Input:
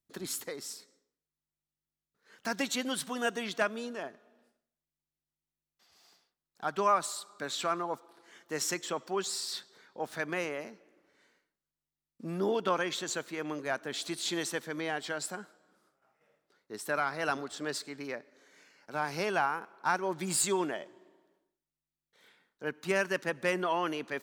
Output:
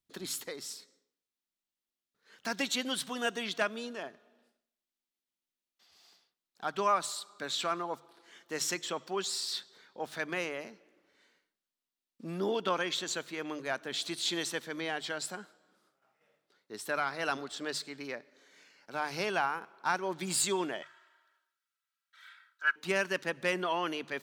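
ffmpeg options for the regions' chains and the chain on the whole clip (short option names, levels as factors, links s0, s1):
-filter_complex "[0:a]asettb=1/sr,asplit=3[s0][s1][s2];[s0]atrim=end=20.824[s3];[s1]atrim=start=20.82:end=22.76,asetpts=PTS-STARTPTS,afade=t=in:d=0.004:c=qsin,afade=t=out:st=1.936:d=0.004:c=qsin,highpass=f=1400:t=q:w=7.1,aecho=1:1:3.1:0.72,atrim=end_sample=85554[s4];[s2]atrim=start=22.756[s5];[s3][s4]acrossfade=d=0.004:c1=hsin:c2=qsin[s6];[s6][s5]acrossfade=d=0.004:c1=qsin:c2=hsin,equalizer=f=3500:t=o:w=1.2:g=5.5,bandreject=f=50:t=h:w=6,bandreject=f=100:t=h:w=6,bandreject=f=150:t=h:w=6,volume=0.794"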